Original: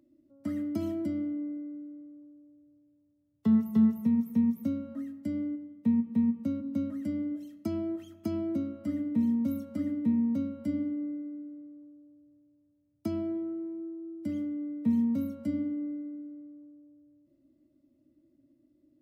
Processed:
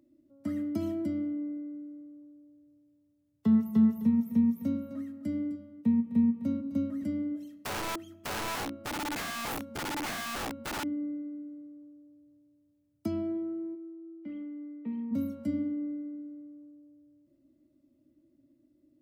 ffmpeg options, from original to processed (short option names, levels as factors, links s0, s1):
-filter_complex "[0:a]asettb=1/sr,asplit=3[s0][s1][s2];[s0]atrim=end=3.634[s3];[s1]atrim=start=3.63:end=7.04,asetpts=PTS-STARTPTS,afade=t=in:d=0.004:c=qsin,afade=t=out:st=3.406:d=0.004:c=qsin,aecho=1:1:257:0.237,atrim=end_sample=150381[s4];[s2]atrim=start=7.036[s5];[s3][s4]acrossfade=d=0.004:c1=hsin:c2=qsin[s6];[s6][s5]acrossfade=d=0.004:c1=qsin:c2=hsin,asettb=1/sr,asplit=3[s7][s8][s9];[s7]atrim=end=7.544[s10];[s8]atrim=start=7.54:end=10.84,asetpts=PTS-STARTPTS,afade=t=in:d=0.004:c=qsin,afade=t=out:st=3.296:d=0.004:c=qsin,aeval=exprs='(mod(33.5*val(0)+1,2)-1)/33.5':c=same[s11];[s9]atrim=start=10.836[s12];[s10][s11]acrossfade=d=0.004:c1=hsin:c2=qsin[s13];[s13][s12]acrossfade=d=0.004:c1=qsin:c2=hsin,asplit=3[s14][s15][s16];[s14]afade=t=out:st=13.74:d=0.02[s17];[s15]highpass=390,equalizer=f=620:t=q:w=4:g=-9,equalizer=f=1000:t=q:w=4:g=-5,equalizer=f=1600:t=q:w=4:g=-8,lowpass=f=2700:w=0.5412,lowpass=f=2700:w=1.3066,afade=t=in:st=13.74:d=0.02,afade=t=out:st=15.11:d=0.02[s18];[s16]afade=t=in:st=15.11:d=0.02[s19];[s17][s18][s19]amix=inputs=3:normalize=0"